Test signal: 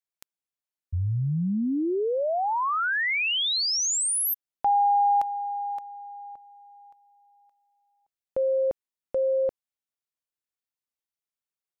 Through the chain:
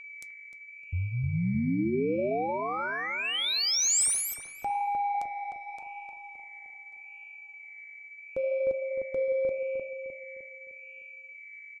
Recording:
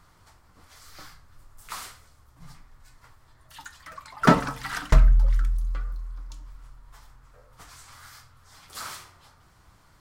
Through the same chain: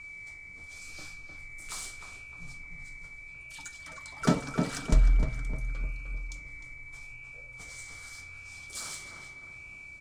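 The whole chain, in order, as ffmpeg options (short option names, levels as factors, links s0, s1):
-filter_complex "[0:a]equalizer=f=1000:t=o:w=1:g=-8,equalizer=f=2000:t=o:w=1:g=-8,equalizer=f=8000:t=o:w=1:g=10,asplit=2[s0][s1];[s1]acompressor=threshold=0.0316:ratio=6:attack=1.4:release=714:knee=1:detection=peak,volume=1.33[s2];[s0][s2]amix=inputs=2:normalize=0,aeval=exprs='val(0)+0.02*sin(2*PI*2300*n/s)':c=same,adynamicsmooth=sensitivity=2.5:basefreq=7700,flanger=delay=3.2:depth=9.7:regen=-75:speed=0.8:shape=sinusoidal,asplit=2[s3][s4];[s4]adelay=305,lowpass=f=1700:p=1,volume=0.631,asplit=2[s5][s6];[s6]adelay=305,lowpass=f=1700:p=1,volume=0.48,asplit=2[s7][s8];[s8]adelay=305,lowpass=f=1700:p=1,volume=0.48,asplit=2[s9][s10];[s10]adelay=305,lowpass=f=1700:p=1,volume=0.48,asplit=2[s11][s12];[s12]adelay=305,lowpass=f=1700:p=1,volume=0.48,asplit=2[s13][s14];[s14]adelay=305,lowpass=f=1700:p=1,volume=0.48[s15];[s3][s5][s7][s9][s11][s13][s15]amix=inputs=7:normalize=0,volume=0.708"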